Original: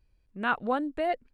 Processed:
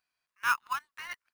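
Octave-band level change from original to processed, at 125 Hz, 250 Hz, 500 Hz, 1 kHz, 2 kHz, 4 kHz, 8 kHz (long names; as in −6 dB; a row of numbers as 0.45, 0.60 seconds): below −15 dB, below −30 dB, below −30 dB, −3.0 dB, +1.0 dB, +1.5 dB, can't be measured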